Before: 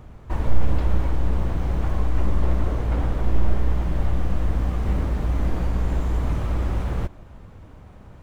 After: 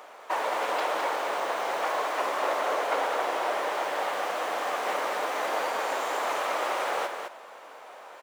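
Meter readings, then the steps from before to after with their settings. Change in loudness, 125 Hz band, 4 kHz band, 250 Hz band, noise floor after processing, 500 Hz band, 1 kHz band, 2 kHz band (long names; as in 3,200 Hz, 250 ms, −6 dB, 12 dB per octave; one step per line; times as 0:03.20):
−3.0 dB, below −40 dB, can't be measured, −13.5 dB, −47 dBFS, +5.5 dB, +10.0 dB, +10.0 dB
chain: high-pass filter 550 Hz 24 dB per octave
on a send: single-tap delay 210 ms −6 dB
on the sum: level +9 dB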